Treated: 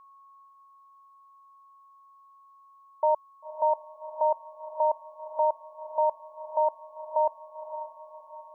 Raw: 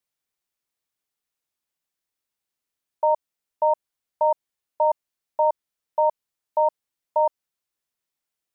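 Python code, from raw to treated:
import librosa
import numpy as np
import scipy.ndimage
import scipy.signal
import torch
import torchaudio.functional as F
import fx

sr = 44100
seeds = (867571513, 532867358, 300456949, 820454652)

p1 = x + 10.0 ** (-48.0 / 20.0) * np.sin(2.0 * np.pi * 1100.0 * np.arange(len(x)) / sr)
p2 = p1 + fx.echo_diffused(p1, sr, ms=535, feedback_pct=45, wet_db=-10.5, dry=0)
y = p2 * 10.0 ** (-3.5 / 20.0)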